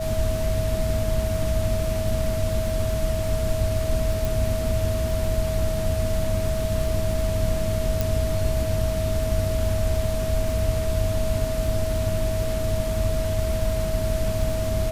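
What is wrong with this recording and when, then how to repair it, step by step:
crackle 38/s -30 dBFS
tone 640 Hz -27 dBFS
4.25 pop
8.01 pop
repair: de-click; notch 640 Hz, Q 30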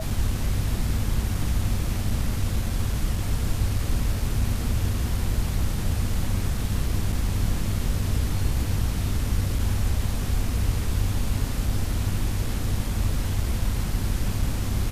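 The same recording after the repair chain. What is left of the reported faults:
none

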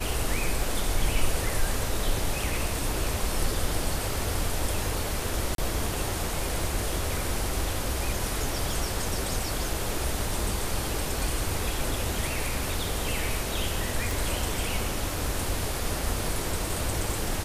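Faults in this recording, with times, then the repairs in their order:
5.55–5.58 gap 32 ms
14.11 pop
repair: de-click; interpolate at 5.55, 32 ms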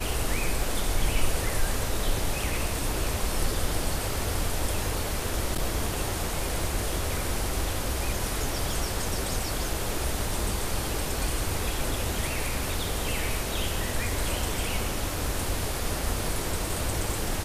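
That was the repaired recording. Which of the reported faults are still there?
none

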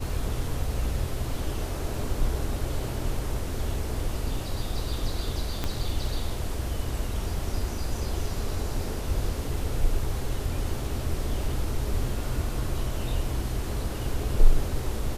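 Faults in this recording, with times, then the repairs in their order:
5.64 pop -14 dBFS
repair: de-click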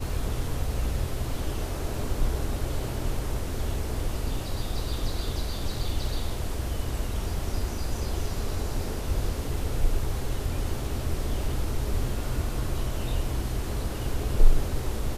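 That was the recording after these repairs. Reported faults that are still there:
5.64 pop

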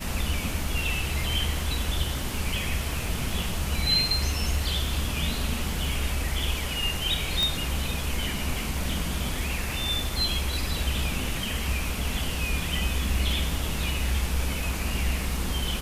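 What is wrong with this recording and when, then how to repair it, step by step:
crackle 38/s -35 dBFS
7.43 pop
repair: de-click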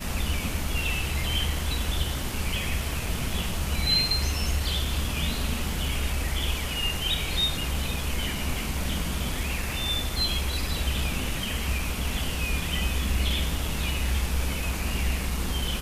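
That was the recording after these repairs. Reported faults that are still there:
none

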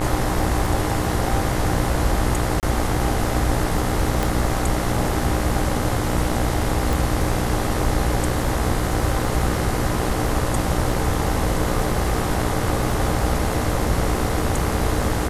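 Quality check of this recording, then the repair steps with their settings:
buzz 60 Hz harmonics 36 -26 dBFS
crackle 20/s -28 dBFS
2.6–2.63 gap 28 ms
4.23 pop
6.93 pop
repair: de-click; de-hum 60 Hz, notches 36; interpolate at 2.6, 28 ms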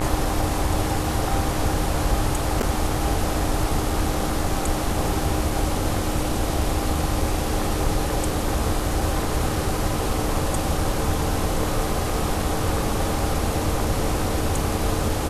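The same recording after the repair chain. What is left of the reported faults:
none

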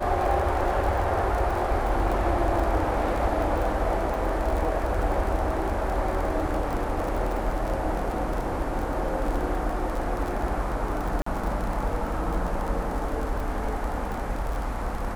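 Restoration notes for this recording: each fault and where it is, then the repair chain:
crackle 40/s -29 dBFS
11.22–11.26 gap 44 ms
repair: de-click; interpolate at 11.22, 44 ms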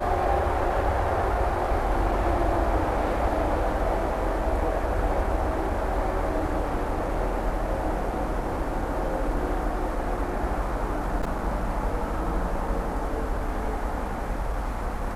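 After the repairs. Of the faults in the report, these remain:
none

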